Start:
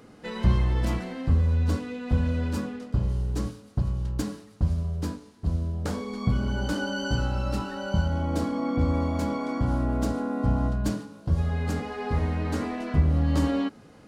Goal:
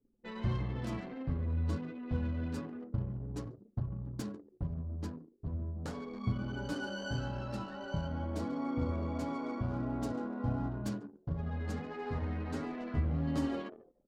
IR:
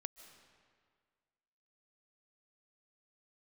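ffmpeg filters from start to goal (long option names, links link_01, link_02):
-filter_complex "[0:a]flanger=delay=7.1:depth=2:regen=-13:speed=1.5:shape=sinusoidal,asplit=5[link_01][link_02][link_03][link_04][link_05];[link_02]adelay=144,afreqshift=80,volume=-14dB[link_06];[link_03]adelay=288,afreqshift=160,volume=-20.9dB[link_07];[link_04]adelay=432,afreqshift=240,volume=-27.9dB[link_08];[link_05]adelay=576,afreqshift=320,volume=-34.8dB[link_09];[link_01][link_06][link_07][link_08][link_09]amix=inputs=5:normalize=0,anlmdn=0.251,volume=-6dB"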